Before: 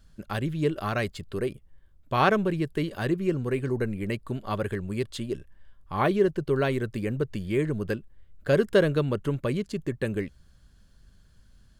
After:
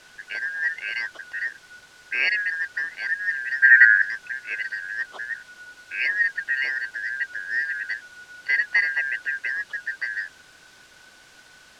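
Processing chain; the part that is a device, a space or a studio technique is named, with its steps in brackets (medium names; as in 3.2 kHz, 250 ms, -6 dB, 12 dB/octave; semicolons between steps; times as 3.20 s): split-band scrambled radio (four frequency bands reordered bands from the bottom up 3142; band-pass 390–3100 Hz; white noise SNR 19 dB); low-pass 5.6 kHz 12 dB/octave; 3.62–4.02 s: high-order bell 1.7 kHz +15.5 dB 1.1 oct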